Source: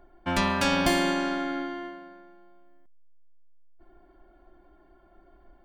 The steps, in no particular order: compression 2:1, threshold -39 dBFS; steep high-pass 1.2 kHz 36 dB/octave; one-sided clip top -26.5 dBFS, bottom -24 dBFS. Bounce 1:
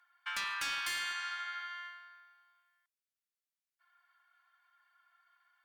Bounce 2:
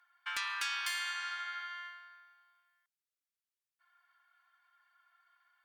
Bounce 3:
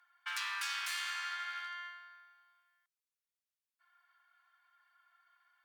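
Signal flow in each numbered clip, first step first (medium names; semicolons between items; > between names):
steep high-pass > one-sided clip > compression; steep high-pass > compression > one-sided clip; one-sided clip > steep high-pass > compression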